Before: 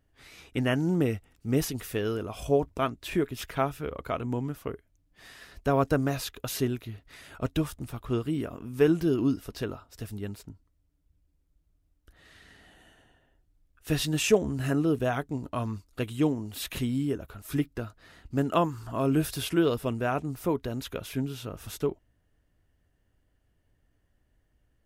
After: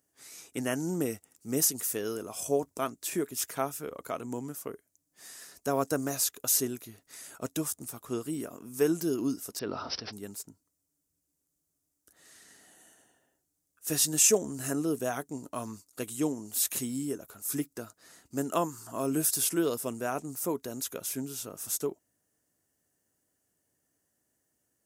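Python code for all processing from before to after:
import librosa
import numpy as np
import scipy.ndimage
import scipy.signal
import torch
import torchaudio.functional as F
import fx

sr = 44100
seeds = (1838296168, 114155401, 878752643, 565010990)

y = fx.chain(x, sr, fx.resample_bad(factor=4, down='none', up='filtered'),
    fx.sustainer(db_per_s=21.0), at=(9.59, 10.13))
y = scipy.signal.sosfilt(scipy.signal.butter(2, 200.0, 'highpass', fs=sr, output='sos'), y)
y = fx.high_shelf_res(y, sr, hz=4800.0, db=13.5, q=1.5)
y = y * librosa.db_to_amplitude(-3.5)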